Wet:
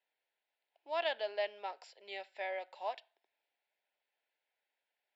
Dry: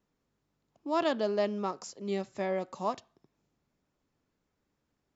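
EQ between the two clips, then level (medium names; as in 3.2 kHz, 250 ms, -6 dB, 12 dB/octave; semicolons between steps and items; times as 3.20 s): high-pass 760 Hz 24 dB/octave; treble shelf 3.7 kHz -11.5 dB; static phaser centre 2.8 kHz, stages 4; +6.0 dB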